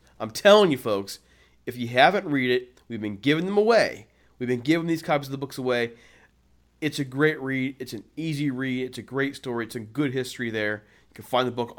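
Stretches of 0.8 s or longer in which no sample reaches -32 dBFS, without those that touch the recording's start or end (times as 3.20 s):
5.87–6.82 s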